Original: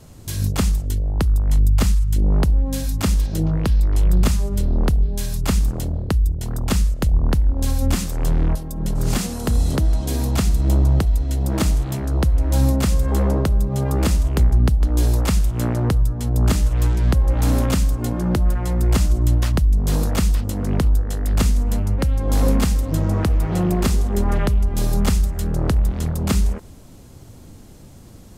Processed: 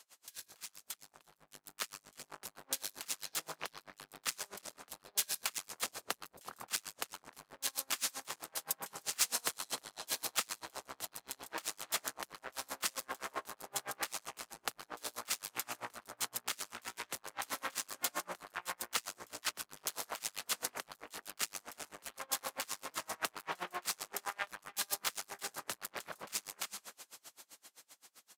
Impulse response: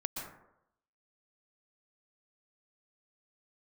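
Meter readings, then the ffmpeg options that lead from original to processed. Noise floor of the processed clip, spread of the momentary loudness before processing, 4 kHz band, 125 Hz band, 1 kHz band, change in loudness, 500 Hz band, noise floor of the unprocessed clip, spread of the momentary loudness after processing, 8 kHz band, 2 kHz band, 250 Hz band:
-77 dBFS, 5 LU, -7.0 dB, under -40 dB, -11.5 dB, -19.5 dB, -22.0 dB, -42 dBFS, 14 LU, -6.5 dB, -7.5 dB, -34.5 dB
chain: -filter_complex "[0:a]aecho=1:1:343:0.237,alimiter=limit=0.141:level=0:latency=1:release=65,asplit=2[s0][s1];[1:a]atrim=start_sample=2205,afade=t=out:st=0.2:d=0.01,atrim=end_sample=9261[s2];[s1][s2]afir=irnorm=-1:irlink=0,volume=0.668[s3];[s0][s3]amix=inputs=2:normalize=0,asoftclip=type=hard:threshold=0.119,highpass=1300,asoftclip=type=tanh:threshold=0.0531,dynaudnorm=f=160:g=21:m=3.35,aeval=exprs='val(0)*pow(10,-32*(0.5-0.5*cos(2*PI*7.7*n/s))/20)':c=same,volume=0.531"

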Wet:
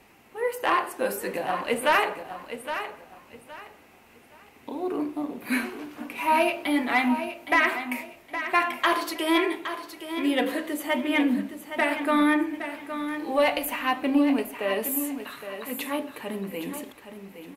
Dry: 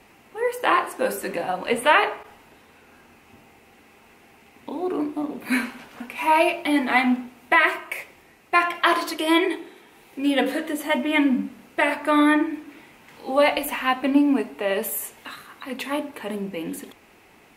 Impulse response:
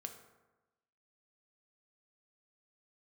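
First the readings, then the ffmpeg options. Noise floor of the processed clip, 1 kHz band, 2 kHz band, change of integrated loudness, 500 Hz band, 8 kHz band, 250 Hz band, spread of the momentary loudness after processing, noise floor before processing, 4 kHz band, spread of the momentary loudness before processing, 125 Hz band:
-54 dBFS, -3.5 dB, -3.5 dB, -4.0 dB, -3.0 dB, -1.5 dB, -3.0 dB, 14 LU, -54 dBFS, -3.0 dB, 16 LU, no reading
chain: -af "asoftclip=type=tanh:threshold=0.447,equalizer=f=13000:t=o:w=0.38:g=4,aecho=1:1:816|1632|2448:0.316|0.0822|0.0214,volume=0.708"

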